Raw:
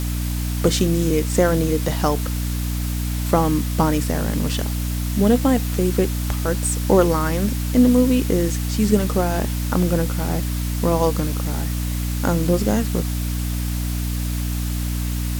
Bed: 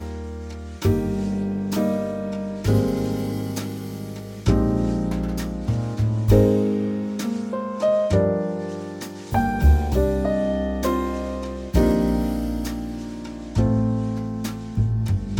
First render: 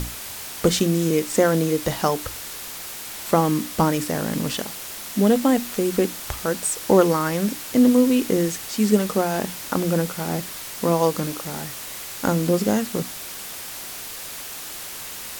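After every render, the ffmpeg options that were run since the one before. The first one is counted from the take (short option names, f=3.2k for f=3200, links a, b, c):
-af "bandreject=f=60:t=h:w=6,bandreject=f=120:t=h:w=6,bandreject=f=180:t=h:w=6,bandreject=f=240:t=h:w=6,bandreject=f=300:t=h:w=6"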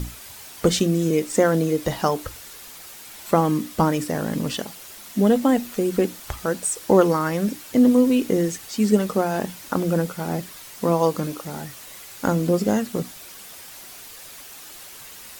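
-af "afftdn=nr=8:nf=-35"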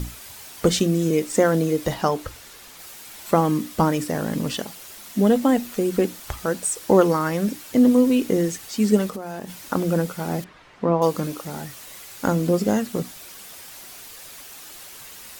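-filter_complex "[0:a]asettb=1/sr,asplit=3[a][b][c];[a]atrim=end=1.944[d];[b]atrim=start=1.94:end=2.79,asetpts=PTS-STARTPTS,afade=t=in:d=0.004:c=qsin,afade=t=out:st=0.846:d=0.004:c=qsin,highshelf=f=6.8k:g=-6[e];[c]atrim=start=2.786[f];[d][e]acrossfade=d=0.004:c1=hsin:c2=qsin[g];[g][f]acrossfade=d=0.004:c1=qsin:c2=hsin,asettb=1/sr,asplit=3[h][i][j];[h]atrim=end=9.094[k];[i]atrim=start=9.09:end=9.67,asetpts=PTS-STARTPTS,afade=t=in:d=0.004:c=qsin,afade=t=out:st=0.576:d=0.004:c=qsin,acompressor=threshold=-28dB:ratio=10:attack=3.2:release=140:knee=1:detection=peak[l];[j]atrim=start=9.666[m];[k][l]acrossfade=d=0.004:c1=hsin:c2=qsin[n];[n][m]acrossfade=d=0.004:c1=qsin:c2=hsin,asettb=1/sr,asplit=3[o][p][q];[o]atrim=end=10.444[r];[p]atrim=start=10.44:end=11.02,asetpts=PTS-STARTPTS,afade=t=in:d=0.004:c=qsin,afade=t=out:st=0.576:d=0.004:c=qsin,lowpass=2.1k[s];[q]atrim=start=11.016[t];[r][s]acrossfade=d=0.004:c1=hsin:c2=qsin[u];[u][t]acrossfade=d=0.004:c1=qsin:c2=hsin"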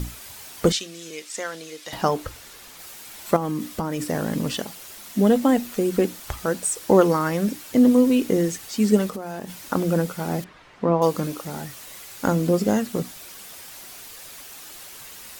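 -filter_complex "[0:a]asettb=1/sr,asplit=3[a][b][c];[a]atrim=end=0.724[d];[b]atrim=start=0.72:end=1.93,asetpts=PTS-STARTPTS,afade=t=in:d=0.004:c=qsin,afade=t=out:st=1.206:d=0.004:c=qsin,bandpass=f=3.9k:t=q:w=0.75[e];[c]atrim=start=1.926[f];[d][e]acrossfade=d=0.004:c1=hsin:c2=qsin[g];[g][f]acrossfade=d=0.004:c1=qsin:c2=hsin,asettb=1/sr,asplit=3[h][i][j];[h]atrim=end=3.364[k];[i]atrim=start=3.36:end=4.03,asetpts=PTS-STARTPTS,afade=t=in:d=0.004:c=qsin,afade=t=out:st=0.666:d=0.004:c=qsin,acompressor=threshold=-22dB:ratio=6:attack=3.2:release=140:knee=1:detection=peak[l];[j]atrim=start=4.026[m];[k][l]acrossfade=d=0.004:c1=hsin:c2=qsin[n];[n][m]acrossfade=d=0.004:c1=qsin:c2=hsin"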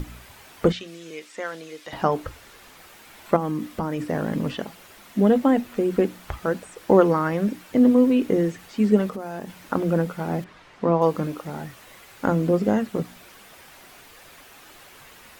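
-filter_complex "[0:a]acrossover=split=3000[a][b];[b]acompressor=threshold=-51dB:ratio=4:attack=1:release=60[c];[a][c]amix=inputs=2:normalize=0,bandreject=f=60:t=h:w=6,bandreject=f=120:t=h:w=6,bandreject=f=180:t=h:w=6,bandreject=f=240:t=h:w=6"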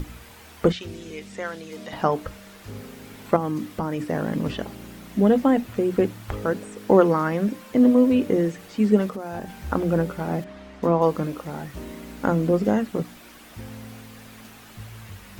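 -filter_complex "[1:a]volume=-19.5dB[a];[0:a][a]amix=inputs=2:normalize=0"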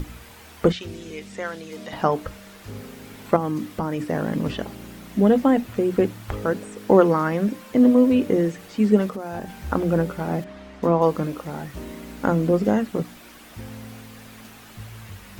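-af "volume=1dB"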